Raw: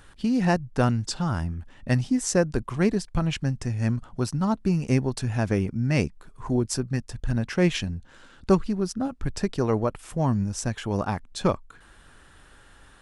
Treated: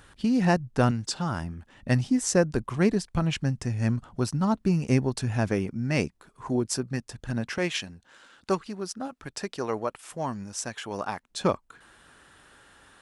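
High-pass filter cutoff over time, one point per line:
high-pass filter 6 dB per octave
48 Hz
from 0:00.91 190 Hz
from 0:01.73 61 Hz
from 0:05.48 200 Hz
from 0:07.58 660 Hz
from 0:11.29 190 Hz

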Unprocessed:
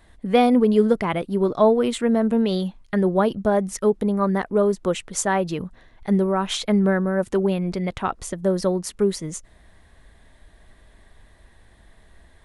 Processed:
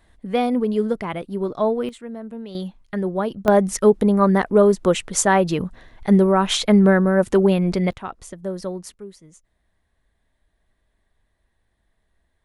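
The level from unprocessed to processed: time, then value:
−4 dB
from 0:01.89 −14 dB
from 0:02.55 −4 dB
from 0:03.48 +5 dB
from 0:07.93 −7 dB
from 0:08.94 −17.5 dB

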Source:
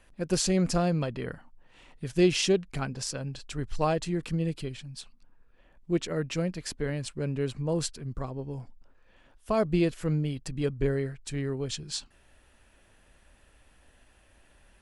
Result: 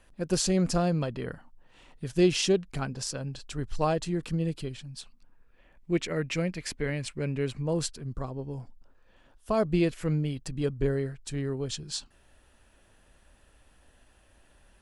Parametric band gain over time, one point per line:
parametric band 2,200 Hz 0.57 octaves
0:04.86 −3 dB
0:05.93 +7.5 dB
0:07.28 +7.5 dB
0:08.09 −4.5 dB
0:09.52 −4.5 dB
0:09.98 +4 dB
0:10.63 −4 dB

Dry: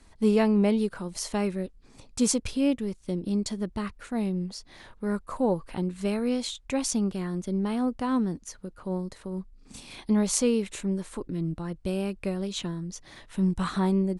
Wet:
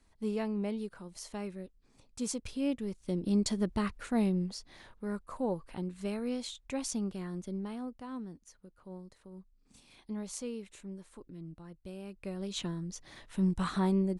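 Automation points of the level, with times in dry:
0:02.22 −12 dB
0:03.46 0 dB
0:04.21 0 dB
0:05.10 −8 dB
0:07.44 −8 dB
0:08.01 −15.5 dB
0:12.01 −15.5 dB
0:12.58 −4 dB

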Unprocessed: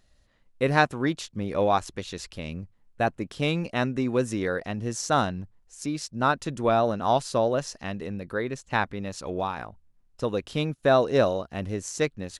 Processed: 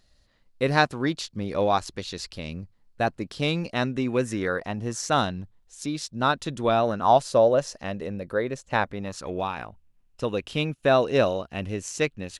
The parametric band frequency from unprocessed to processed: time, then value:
parametric band +7 dB 0.51 octaves
0:03.80 4,500 Hz
0:04.81 730 Hz
0:05.20 3,600 Hz
0:06.71 3,600 Hz
0:07.21 560 Hz
0:08.91 560 Hz
0:09.37 2,700 Hz

